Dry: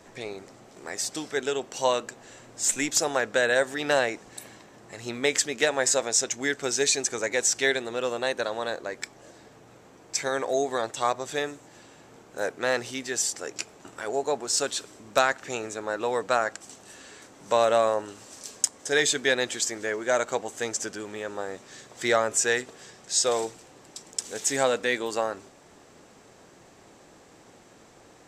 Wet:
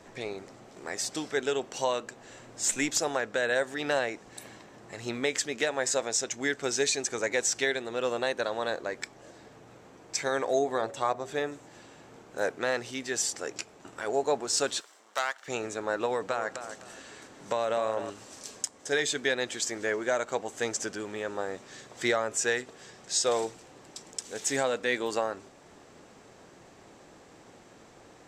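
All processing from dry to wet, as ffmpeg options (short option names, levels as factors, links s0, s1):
-filter_complex "[0:a]asettb=1/sr,asplit=3[s0][s1][s2];[s0]atrim=end=10.594[s3];[s1]atrim=start=10.59:end=11.52,asetpts=PTS-STARTPTS,afade=t=in:d=0.004:c=qsin,afade=t=out:st=0.926:d=0.004:c=qsin,equalizer=f=5800:t=o:w=2.9:g=-6,bandreject=f=79.96:t=h:w=4,bandreject=f=159.92:t=h:w=4,bandreject=f=239.88:t=h:w=4,bandreject=f=319.84:t=h:w=4,bandreject=f=399.8:t=h:w=4,bandreject=f=479.76:t=h:w=4,bandreject=f=559.72:t=h:w=4,bandreject=f=639.68:t=h:w=4,bandreject=f=719.64:t=h:w=4[s4];[s2]atrim=start=11.516[s5];[s3][s4]acrossfade=d=0.004:c1=hsin:c2=qsin[s6];[s6][s5]acrossfade=d=0.004:c1=qsin:c2=hsin,asettb=1/sr,asplit=3[s7][s8][s9];[s7]atrim=end=14.804[s10];[s8]atrim=start=14.8:end=15.48,asetpts=PTS-STARTPTS,afade=t=in:d=0.004:c=qsin,afade=t=out:st=0.676:d=0.004:c=qsin,aeval=exprs='if(lt(val(0),0),0.251*val(0),val(0))':c=same,highpass=800,bandreject=f=2500:w=13[s11];[s9]atrim=start=15.476[s12];[s10][s11]acrossfade=d=0.004:c1=hsin:c2=qsin[s13];[s13][s12]acrossfade=d=0.004:c1=qsin:c2=hsin,asettb=1/sr,asplit=3[s14][s15][s16];[s14]atrim=end=16.054[s17];[s15]atrim=start=16.05:end=18.1,asetpts=PTS-STARTPTS,afade=t=in:d=0.004:c=qsin,afade=t=out:st=2.046:d=0.004:c=qsin,acompressor=threshold=0.0631:ratio=5:attack=3.2:release=140:knee=1:detection=peak,asplit=2[s18][s19];[s19]adelay=257,lowpass=f=4900:p=1,volume=0.316,asplit=2[s20][s21];[s21]adelay=257,lowpass=f=4900:p=1,volume=0.25,asplit=2[s22][s23];[s23]adelay=257,lowpass=f=4900:p=1,volume=0.25[s24];[s18][s20][s22][s24]amix=inputs=4:normalize=0,atrim=end_sample=90405[s25];[s16]atrim=start=18.096[s26];[s17][s25]acrossfade=d=0.004:c1=hsin:c2=qsin[s27];[s27][s26]acrossfade=d=0.004:c1=qsin:c2=hsin,highshelf=f=7600:g=-6.5,alimiter=limit=0.178:level=0:latency=1:release=492"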